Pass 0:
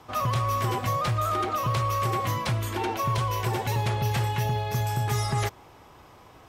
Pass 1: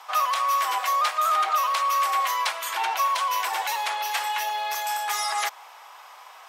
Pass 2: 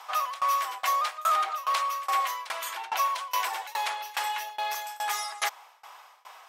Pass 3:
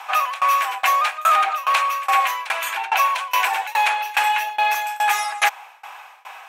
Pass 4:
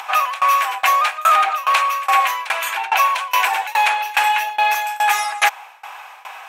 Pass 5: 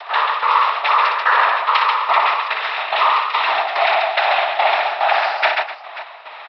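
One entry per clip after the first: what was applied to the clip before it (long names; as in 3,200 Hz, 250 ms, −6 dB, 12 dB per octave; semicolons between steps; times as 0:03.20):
in parallel at 0 dB: brickwall limiter −25.5 dBFS, peak gain reduction 8 dB; on the sum: inverse Chebyshev high-pass filter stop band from 170 Hz, stop band 70 dB; level +2.5 dB
shaped tremolo saw down 2.4 Hz, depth 95%
thirty-one-band graphic EQ 800 Hz +7 dB, 1,600 Hz +7 dB, 2,500 Hz +11 dB, 5,000 Hz −5 dB; level +6 dB
upward compression, threshold −33 dBFS; level +2.5 dB
cochlear-implant simulation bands 12; downsampling to 11,025 Hz; multi-tap delay 60/137/253/537 ms −5.5/−4/−15/−15.5 dB; level −1 dB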